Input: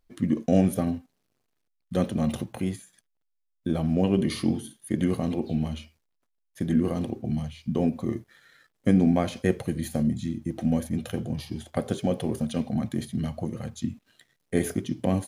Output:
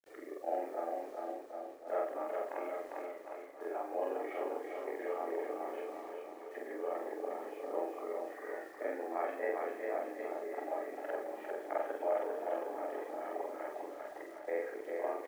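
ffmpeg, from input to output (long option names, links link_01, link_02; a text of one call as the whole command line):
ffmpeg -i in.wav -filter_complex "[0:a]afftfilt=real='re':imag='-im':win_size=4096:overlap=0.75,dynaudnorm=framelen=390:gausssize=5:maxgain=4.5dB,asplit=2[link_01][link_02];[link_02]asplit=6[link_03][link_04][link_05][link_06][link_07][link_08];[link_03]adelay=86,afreqshift=-44,volume=-16.5dB[link_09];[link_04]adelay=172,afreqshift=-88,volume=-20.8dB[link_10];[link_05]adelay=258,afreqshift=-132,volume=-25.1dB[link_11];[link_06]adelay=344,afreqshift=-176,volume=-29.4dB[link_12];[link_07]adelay=430,afreqshift=-220,volume=-33.7dB[link_13];[link_08]adelay=516,afreqshift=-264,volume=-38dB[link_14];[link_09][link_10][link_11][link_12][link_13][link_14]amix=inputs=6:normalize=0[link_15];[link_01][link_15]amix=inputs=2:normalize=0,acompressor=threshold=-44dB:ratio=2,highpass=frequency=400:width_type=q:width=0.5412,highpass=frequency=400:width_type=q:width=1.307,lowpass=frequency=2000:width_type=q:width=0.5176,lowpass=frequency=2000:width_type=q:width=0.7071,lowpass=frequency=2000:width_type=q:width=1.932,afreqshift=75,acrusher=bits=11:mix=0:aa=0.000001,asplit=2[link_16][link_17];[link_17]aecho=0:1:400|760|1084|1376|1638:0.631|0.398|0.251|0.158|0.1[link_18];[link_16][link_18]amix=inputs=2:normalize=0,volume=7dB" out.wav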